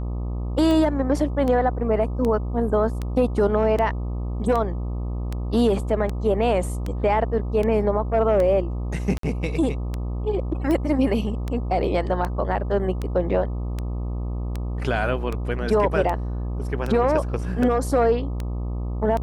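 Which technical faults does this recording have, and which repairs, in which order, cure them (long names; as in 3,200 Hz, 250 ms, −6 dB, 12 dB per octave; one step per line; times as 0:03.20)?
mains buzz 60 Hz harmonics 21 −27 dBFS
scratch tick 78 rpm −15 dBFS
0:09.18–0:09.23: drop-out 53 ms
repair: click removal
hum removal 60 Hz, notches 21
repair the gap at 0:09.18, 53 ms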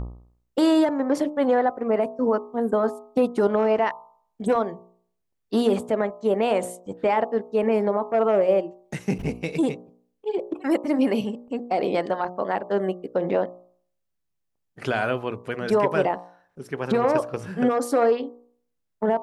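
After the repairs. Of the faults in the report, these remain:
none of them is left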